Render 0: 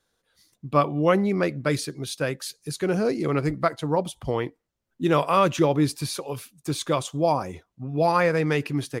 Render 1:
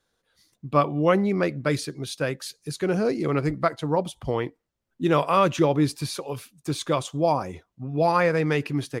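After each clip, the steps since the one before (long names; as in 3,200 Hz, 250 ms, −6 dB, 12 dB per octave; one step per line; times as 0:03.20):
high-shelf EQ 8,200 Hz −5 dB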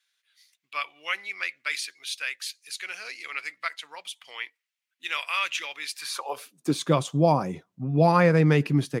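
high-pass filter sweep 2,300 Hz → 160 Hz, 0:05.92–0:06.81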